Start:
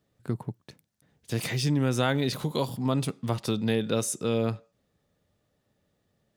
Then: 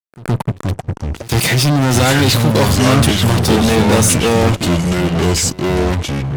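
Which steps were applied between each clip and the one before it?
fuzz box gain 34 dB, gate -42 dBFS; reverse echo 0.119 s -20.5 dB; echoes that change speed 0.282 s, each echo -4 st, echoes 2; gain +2.5 dB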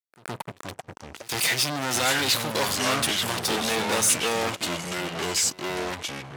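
HPF 1000 Hz 6 dB/oct; gain -6 dB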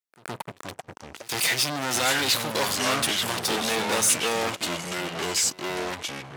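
low shelf 110 Hz -5.5 dB

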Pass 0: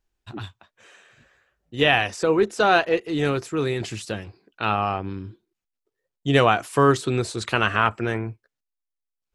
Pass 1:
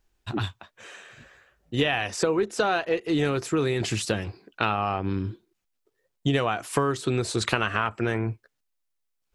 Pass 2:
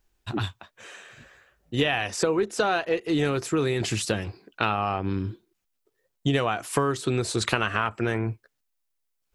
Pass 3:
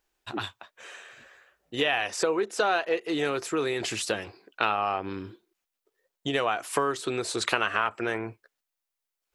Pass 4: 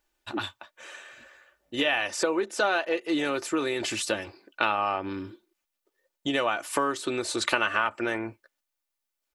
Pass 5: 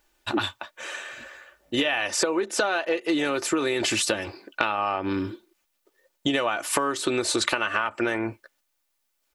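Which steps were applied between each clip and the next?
compressor 10:1, threshold -27 dBFS, peak gain reduction 15.5 dB; gain +6.5 dB
high shelf 10000 Hz +4.5 dB
tone controls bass -15 dB, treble -2 dB
comb 3.4 ms, depth 46%
compressor 6:1, threshold -30 dBFS, peak gain reduction 11 dB; gain +9 dB

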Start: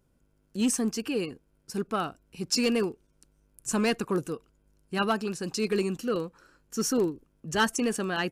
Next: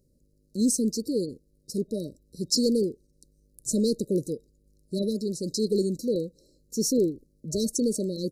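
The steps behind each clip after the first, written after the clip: FFT band-reject 620–3800 Hz; gain +2.5 dB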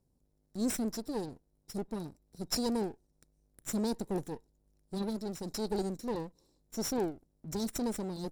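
minimum comb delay 0.55 ms; gain -7.5 dB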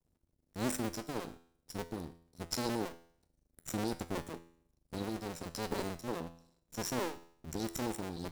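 cycle switcher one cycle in 2, muted; resonator 84 Hz, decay 0.59 s, harmonics all, mix 60%; gain +6 dB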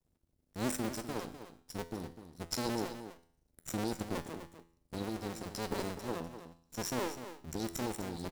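echo 0.251 s -11 dB

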